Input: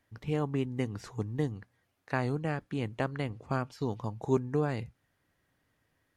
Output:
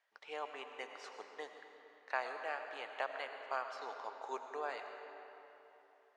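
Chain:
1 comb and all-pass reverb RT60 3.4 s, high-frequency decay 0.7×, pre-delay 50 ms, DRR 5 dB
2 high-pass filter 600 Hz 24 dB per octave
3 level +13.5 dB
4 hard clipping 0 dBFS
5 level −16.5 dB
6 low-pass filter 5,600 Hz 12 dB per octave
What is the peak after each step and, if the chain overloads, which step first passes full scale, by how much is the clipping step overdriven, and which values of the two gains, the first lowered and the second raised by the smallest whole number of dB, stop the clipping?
−15.5, −17.5, −4.0, −4.0, −20.5, −20.5 dBFS
no step passes full scale

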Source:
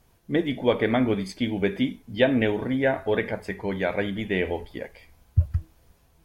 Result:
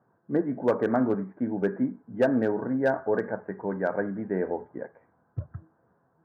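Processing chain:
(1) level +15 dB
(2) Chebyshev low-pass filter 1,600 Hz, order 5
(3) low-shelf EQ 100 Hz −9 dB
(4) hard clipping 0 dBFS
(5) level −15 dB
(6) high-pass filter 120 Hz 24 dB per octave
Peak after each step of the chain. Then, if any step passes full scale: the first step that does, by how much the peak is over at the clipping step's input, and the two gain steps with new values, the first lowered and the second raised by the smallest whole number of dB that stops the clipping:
+9.5, +7.5, +7.5, 0.0, −15.0, −11.0 dBFS
step 1, 7.5 dB
step 1 +7 dB, step 5 −7 dB

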